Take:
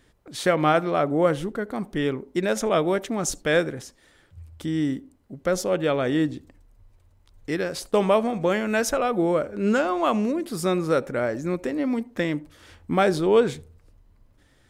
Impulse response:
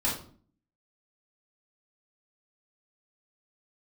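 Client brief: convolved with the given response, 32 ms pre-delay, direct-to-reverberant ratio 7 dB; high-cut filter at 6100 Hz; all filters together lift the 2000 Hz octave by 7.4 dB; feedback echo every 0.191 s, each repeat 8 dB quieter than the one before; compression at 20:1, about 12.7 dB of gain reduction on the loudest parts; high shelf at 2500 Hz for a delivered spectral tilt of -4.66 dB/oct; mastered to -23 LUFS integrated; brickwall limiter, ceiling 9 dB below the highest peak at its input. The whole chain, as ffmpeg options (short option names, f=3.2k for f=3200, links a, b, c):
-filter_complex "[0:a]lowpass=6.1k,equalizer=f=2k:t=o:g=8,highshelf=f=2.5k:g=4,acompressor=threshold=-25dB:ratio=20,alimiter=limit=-22.5dB:level=0:latency=1,aecho=1:1:191|382|573|764|955:0.398|0.159|0.0637|0.0255|0.0102,asplit=2[a][b];[1:a]atrim=start_sample=2205,adelay=32[c];[b][c]afir=irnorm=-1:irlink=0,volume=-15.5dB[d];[a][d]amix=inputs=2:normalize=0,volume=8dB"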